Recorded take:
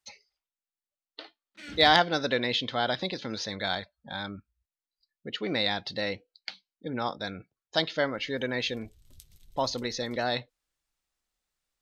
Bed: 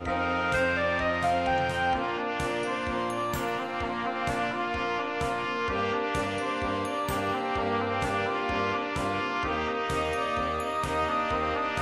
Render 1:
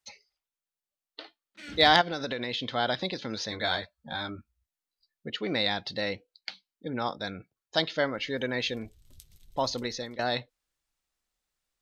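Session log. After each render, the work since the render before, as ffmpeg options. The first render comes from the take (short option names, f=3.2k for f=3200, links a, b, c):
-filter_complex "[0:a]asettb=1/sr,asplit=3[a][b][c];[a]atrim=end=2.014[d];[b]atrim=start=2.01:end=2.69,asetpts=PTS-STARTPTS,afade=t=in:d=0.004:c=qsin,afade=t=out:st=0.676:d=0.004:c=qsin,acompressor=threshold=-28dB:ratio=6:attack=3.2:release=140:knee=1:detection=peak[e];[c]atrim=start=2.686[f];[d][e]acrossfade=d=0.004:c1=hsin:c2=qsin[g];[g][f]acrossfade=d=0.004:c1=qsin:c2=hsin,asettb=1/sr,asplit=3[h][i][j];[h]atrim=end=3.504[k];[i]atrim=start=3.5:end=5.3,asetpts=PTS-STARTPTS,afade=t=in:d=0.004:c=qsin,afade=t=out:st=1.796:d=0.004:c=qsin,asplit=2[l][m];[m]adelay=13,volume=-3dB[n];[l][n]amix=inputs=2:normalize=0,atrim=end_sample=79380[o];[j]atrim=start=5.296[p];[k][o]acrossfade=d=0.004:c1=hsin:c2=qsin[q];[q][p]acrossfade=d=0.004:c1=qsin:c2=hsin,asplit=2[r][s];[r]atrim=end=10.19,asetpts=PTS-STARTPTS,afade=t=out:st=9.75:d=0.44:c=qsin:silence=0.199526[t];[s]atrim=start=10.19,asetpts=PTS-STARTPTS,afade=t=in:d=0.004:c=hsin:silence=0.199526[u];[t][u]concat=n=2:v=0:a=1"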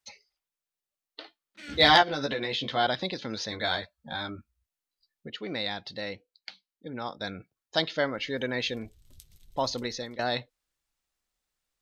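-filter_complex "[0:a]asettb=1/sr,asplit=3[a][b][c];[a]atrim=end=1.684[d];[b]atrim=start=1.68:end=2.87,asetpts=PTS-STARTPTS,afade=t=in:d=0.004:c=qsin,afade=t=out:st=1.186:d=0.004:c=qsin,asplit=2[e][f];[f]adelay=14,volume=-2dB[g];[e][g]amix=inputs=2:normalize=0,atrim=end_sample=52479[h];[c]atrim=start=2.866[i];[d][h]acrossfade=d=0.004:c1=hsin:c2=qsin[j];[j][i]acrossfade=d=0.004:c1=qsin:c2=hsin,asplit=3[k][l][m];[k]atrim=end=5.272[n];[l]atrim=start=5.268:end=7.212,asetpts=PTS-STARTPTS,volume=-4.5dB[o];[m]atrim=start=7.208[p];[n][o]acrossfade=d=0.004:c1=hsin:c2=hsin[q];[q][p]acrossfade=d=0.004:c1=hsin:c2=hsin"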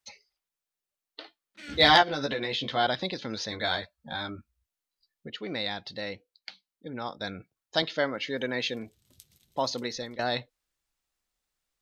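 -filter_complex "[0:a]asettb=1/sr,asplit=3[a][b][c];[a]atrim=end=7.824[d];[b]atrim=start=7.82:end=9.96,asetpts=PTS-STARTPTS,afade=t=in:d=0.004:c=qsin,afade=t=out:st=2.136:d=0.004:c=qsin,highpass=130[e];[c]atrim=start=9.956[f];[d][e]acrossfade=d=0.004:c1=hsin:c2=qsin[g];[g][f]acrossfade=d=0.004:c1=qsin:c2=hsin"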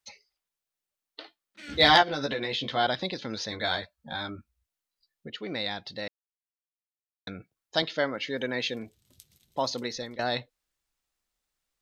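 -filter_complex "[0:a]asplit=3[a][b][c];[a]atrim=end=6.08,asetpts=PTS-STARTPTS,afade=t=out:st=6.076:d=0.004:c=hsin[d];[b]atrim=start=6.08:end=7.27,asetpts=PTS-STARTPTS,volume=0[e];[c]atrim=start=7.27,asetpts=PTS-STARTPTS,afade=t=in:d=0.004:c=hsin[f];[d][e][f]concat=n=3:v=0:a=1"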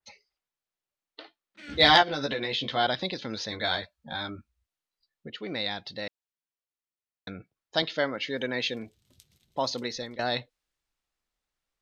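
-af "lowpass=f=3.7k:p=1,adynamicequalizer=threshold=0.00708:dfrequency=2400:dqfactor=0.7:tfrequency=2400:tqfactor=0.7:attack=5:release=100:ratio=0.375:range=2.5:mode=boostabove:tftype=highshelf"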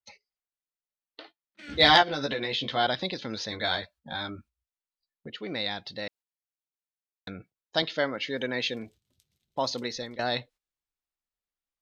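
-af "agate=range=-11dB:threshold=-53dB:ratio=16:detection=peak"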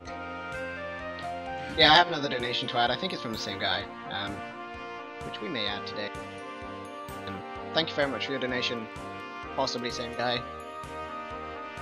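-filter_complex "[1:a]volume=-10dB[a];[0:a][a]amix=inputs=2:normalize=0"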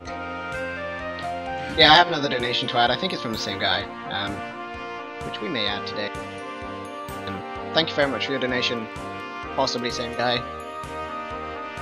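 -af "volume=6dB,alimiter=limit=-1dB:level=0:latency=1"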